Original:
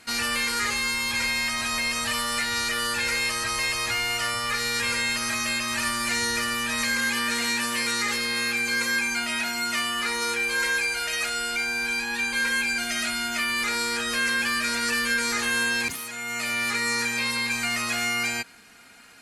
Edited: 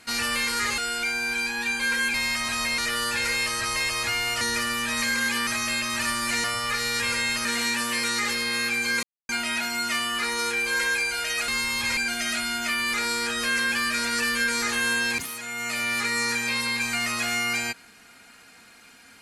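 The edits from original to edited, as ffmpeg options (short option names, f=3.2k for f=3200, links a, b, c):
-filter_complex "[0:a]asplit=12[a][b][c][d][e][f][g][h][i][j][k][l];[a]atrim=end=0.782[m];[b]atrim=start=11.308:end=12.672[n];[c]atrim=start=1.268:end=1.912[o];[d]atrim=start=2.608:end=4.242[p];[e]atrim=start=6.218:end=7.282[q];[f]atrim=start=5.248:end=6.222[r];[g]atrim=start=4.238:end=5.252[s];[h]atrim=start=7.278:end=8.86,asetpts=PTS-STARTPTS,afade=t=out:st=1.578:d=0.004:c=hsin[t];[i]atrim=start=8.86:end=9.12,asetpts=PTS-STARTPTS,volume=0[u];[j]atrim=start=9.12:end=11.312,asetpts=PTS-STARTPTS,afade=t=in:d=0.004:c=hsin[v];[k]atrim=start=0.778:end=1.272[w];[l]atrim=start=12.668[x];[m][n]acrossfade=d=0.004:c1=hsin:c2=hsin[y];[y][o]acrossfade=d=0.004:c1=hsin:c2=hsin[z];[z][p]acrossfade=d=0.004:c1=hsin:c2=hsin[aa];[aa][q]acrossfade=d=0.004:c1=hsin:c2=hsin[ab];[ab][r]acrossfade=d=0.004:c1=hsin:c2=hsin[ac];[ac][s]acrossfade=d=0.004:c1=hsin:c2=hsin[ad];[t][u][v]concat=n=3:v=0:a=1[ae];[ad][ae]acrossfade=d=0.004:c1=hsin:c2=hsin[af];[af][w]acrossfade=d=0.004:c1=hsin:c2=hsin[ag];[ag][x]acrossfade=d=0.004:c1=hsin:c2=hsin"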